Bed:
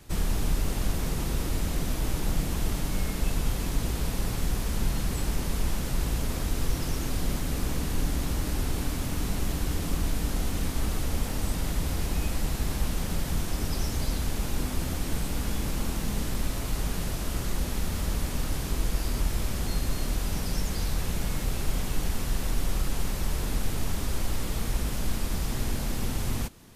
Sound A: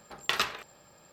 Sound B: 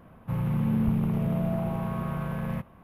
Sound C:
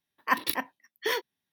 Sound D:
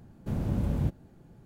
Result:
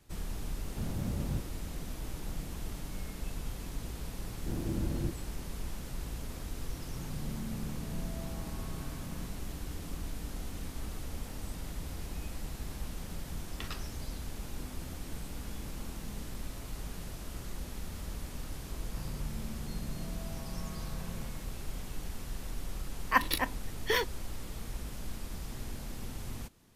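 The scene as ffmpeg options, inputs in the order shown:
ffmpeg -i bed.wav -i cue0.wav -i cue1.wav -i cue2.wav -i cue3.wav -filter_complex "[4:a]asplit=2[link_01][link_02];[2:a]asplit=2[link_03][link_04];[0:a]volume=-11.5dB[link_05];[link_02]equalizer=frequency=330:width_type=o:width=0.34:gain=13[link_06];[link_04]acompressor=threshold=-40dB:ratio=6:attack=3.2:release=140:knee=1:detection=peak[link_07];[3:a]aresample=32000,aresample=44100[link_08];[link_01]atrim=end=1.45,asetpts=PTS-STARTPTS,volume=-7dB,afade=type=in:duration=0.004:curve=hsin,afade=type=out:start_time=1.446:duration=0.004:curve=hsin,adelay=500[link_09];[link_06]atrim=end=1.45,asetpts=PTS-STARTPTS,volume=-7.5dB,afade=type=in:duration=0.004:curve=hsin,afade=type=out:start_time=1.446:duration=0.004:curve=hsin,adelay=4200[link_10];[link_03]atrim=end=2.83,asetpts=PTS-STARTPTS,volume=-15.5dB,afade=type=in:duration=0.004:curve=hsin,afade=type=out:start_time=2.826:duration=0.004:curve=hsin,adelay=293706S[link_11];[1:a]atrim=end=1.12,asetpts=PTS-STARTPTS,volume=-16.5dB,afade=type=in:duration=0.004:curve=hsin,afade=type=out:start_time=1.116:duration=0.004:curve=hsin,adelay=13310[link_12];[link_07]atrim=end=2.83,asetpts=PTS-STARTPTS,volume=-2.5dB,afade=type=in:duration=0.004:curve=hsin,afade=type=out:start_time=2.826:duration=0.004:curve=hsin,adelay=18690[link_13];[link_08]atrim=end=1.52,asetpts=PTS-STARTPTS,volume=-0.5dB,afade=type=in:duration=0.004:curve=hsin,afade=type=out:start_time=1.516:duration=0.004:curve=hsin,adelay=22840[link_14];[link_05][link_09][link_10][link_11][link_12][link_13][link_14]amix=inputs=7:normalize=0" out.wav

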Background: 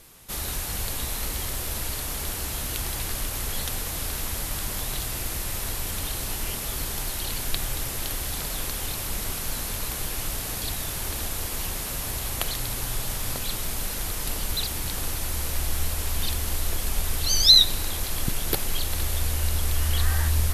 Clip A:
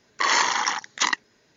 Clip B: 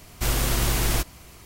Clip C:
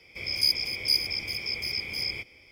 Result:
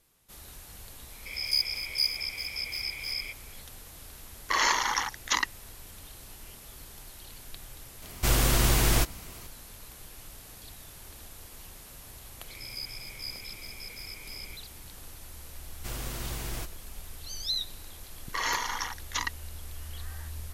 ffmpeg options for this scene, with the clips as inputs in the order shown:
ffmpeg -i bed.wav -i cue0.wav -i cue1.wav -i cue2.wav -filter_complex "[3:a]asplit=2[link_01][link_02];[1:a]asplit=2[link_03][link_04];[2:a]asplit=2[link_05][link_06];[0:a]volume=-17dB[link_07];[link_01]highpass=680[link_08];[link_02]acrossover=split=4700[link_09][link_10];[link_10]acompressor=threshold=-31dB:ratio=4:attack=1:release=60[link_11];[link_09][link_11]amix=inputs=2:normalize=0[link_12];[link_04]aecho=1:1:4.2:0.32[link_13];[link_08]atrim=end=2.51,asetpts=PTS-STARTPTS,volume=-3dB,afade=type=in:duration=0.004:curve=hsin,afade=type=out:start_time=2.506:duration=0.004:curve=hsin,adelay=1100[link_14];[link_03]atrim=end=1.56,asetpts=PTS-STARTPTS,volume=-4.5dB,afade=type=in:duration=0.004:curve=hsin,afade=type=out:start_time=1.556:duration=0.004:curve=hsin,adelay=4300[link_15];[link_05]atrim=end=1.45,asetpts=PTS-STARTPTS,afade=type=in:duration=0.004:curve=hsin,afade=type=out:start_time=1.446:duration=0.004:curve=hsin,adelay=353682S[link_16];[link_12]atrim=end=2.51,asetpts=PTS-STARTPTS,volume=-12dB,afade=type=in:duration=0.004:curve=hsin,afade=type=out:start_time=2.506:duration=0.004:curve=hsin,adelay=12340[link_17];[link_06]atrim=end=1.45,asetpts=PTS-STARTPTS,volume=-13dB,afade=type=in:duration=0.004:curve=hsin,afade=type=out:start_time=1.446:duration=0.004:curve=hsin,adelay=15630[link_18];[link_13]atrim=end=1.56,asetpts=PTS-STARTPTS,volume=-10dB,afade=type=in:duration=0.004:curve=hsin,afade=type=out:start_time=1.556:duration=0.004:curve=hsin,adelay=18140[link_19];[link_07][link_14][link_15][link_16][link_17][link_18][link_19]amix=inputs=7:normalize=0" out.wav

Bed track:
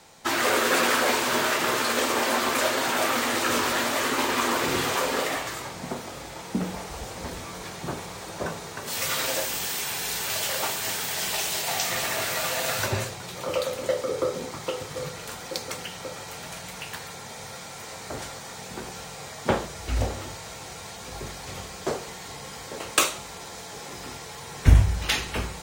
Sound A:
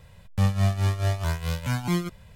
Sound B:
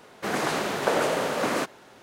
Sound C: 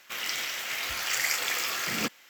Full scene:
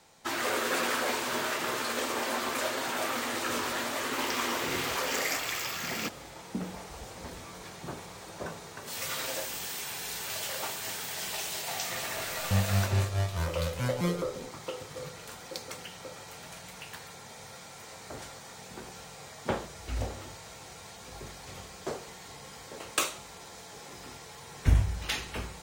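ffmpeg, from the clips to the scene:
ffmpeg -i bed.wav -i cue0.wav -i cue1.wav -i cue2.wav -filter_complex "[0:a]volume=-7.5dB[link_01];[3:a]atrim=end=2.29,asetpts=PTS-STARTPTS,volume=-5dB,afade=type=in:duration=0.004:curve=hsin,afade=type=out:start_time=2.286:duration=0.004:curve=hsin,adelay=176841S[link_02];[1:a]atrim=end=2.35,asetpts=PTS-STARTPTS,volume=-5dB,afade=type=in:duration=0.004:curve=hsin,afade=type=out:start_time=2.346:duration=0.004:curve=hsin,adelay=12130[link_03];[link_01][link_02][link_03]amix=inputs=3:normalize=0" out.wav

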